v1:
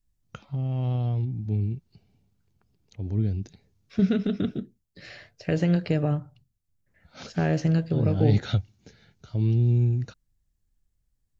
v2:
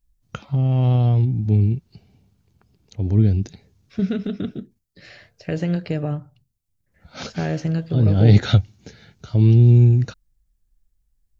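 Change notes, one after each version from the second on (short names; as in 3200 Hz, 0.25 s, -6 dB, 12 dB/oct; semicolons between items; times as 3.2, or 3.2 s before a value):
first voice +9.5 dB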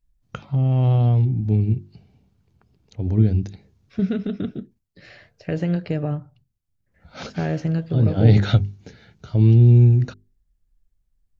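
first voice: add notches 50/100/150/200/250/300/350/400 Hz; master: add high shelf 4400 Hz -8.5 dB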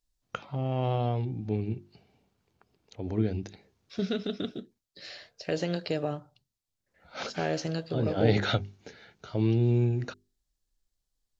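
second voice: add resonant high shelf 3000 Hz +9 dB, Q 1.5; master: add tone controls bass -15 dB, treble -2 dB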